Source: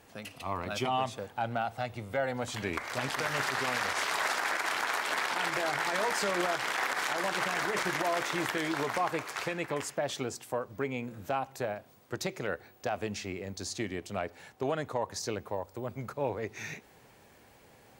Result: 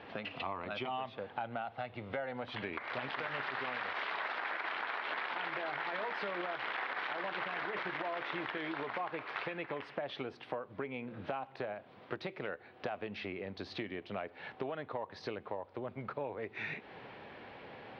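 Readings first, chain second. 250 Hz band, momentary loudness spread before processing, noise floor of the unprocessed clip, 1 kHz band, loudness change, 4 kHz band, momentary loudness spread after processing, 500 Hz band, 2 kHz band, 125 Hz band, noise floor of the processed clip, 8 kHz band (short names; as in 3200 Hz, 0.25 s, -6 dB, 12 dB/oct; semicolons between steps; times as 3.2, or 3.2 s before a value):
-6.5 dB, 9 LU, -59 dBFS, -6.5 dB, -7.0 dB, -8.5 dB, 6 LU, -6.5 dB, -6.0 dB, -9.0 dB, -57 dBFS, under -30 dB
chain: inverse Chebyshev low-pass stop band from 6700 Hz, stop band 40 dB; compressor, threshold -46 dBFS, peak gain reduction 18.5 dB; HPF 210 Hz 6 dB/oct; gain +9.5 dB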